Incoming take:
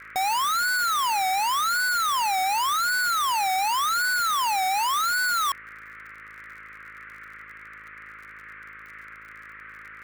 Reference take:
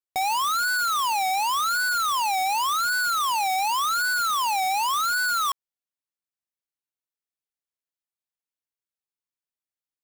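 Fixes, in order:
click removal
hum removal 53.6 Hz, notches 11
noise reduction from a noise print 30 dB

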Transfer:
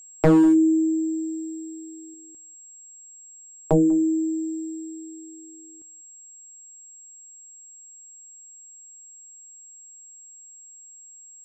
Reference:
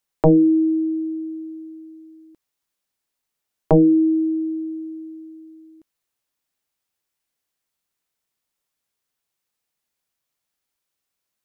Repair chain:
clipped peaks rebuilt −12.5 dBFS
notch filter 7,600 Hz, Q 30
echo removal 195 ms −22 dB
level correction +4.5 dB, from 0:02.14

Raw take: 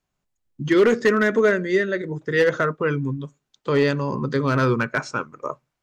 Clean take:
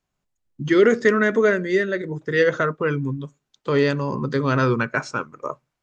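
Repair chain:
clipped peaks rebuilt −10.5 dBFS

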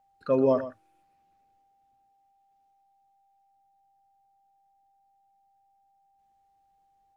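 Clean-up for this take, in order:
notch filter 790 Hz, Q 30
echo removal 120 ms −13 dB

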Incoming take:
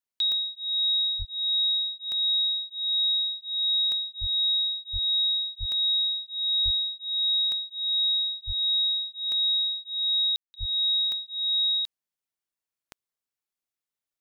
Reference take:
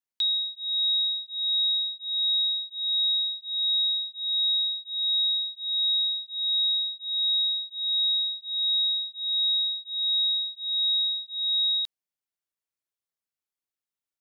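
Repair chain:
click removal
high-pass at the plosives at 0:01.18/0:04.20/0:04.92/0:05.59/0:06.64/0:08.46/0:10.59
ambience match 0:10.36–0:10.54

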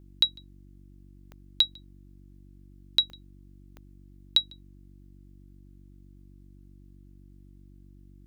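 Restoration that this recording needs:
click removal
hum removal 47.8 Hz, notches 7

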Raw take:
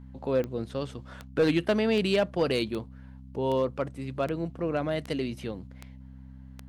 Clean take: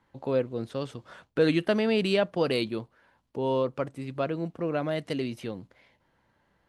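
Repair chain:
clipped peaks rebuilt −17 dBFS
click removal
hum removal 65.1 Hz, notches 4

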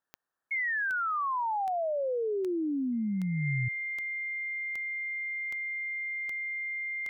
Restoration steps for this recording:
click removal
notch filter 2,100 Hz, Q 30
downward expander −27 dBFS, range −21 dB

